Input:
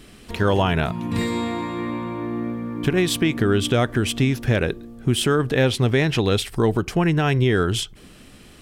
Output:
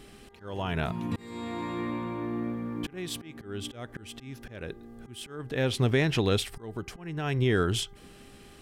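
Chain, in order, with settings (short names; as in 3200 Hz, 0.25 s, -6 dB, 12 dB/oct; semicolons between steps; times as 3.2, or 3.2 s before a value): auto swell 0.551 s; buzz 400 Hz, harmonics 5, -53 dBFS -7 dB/oct; gain -5.5 dB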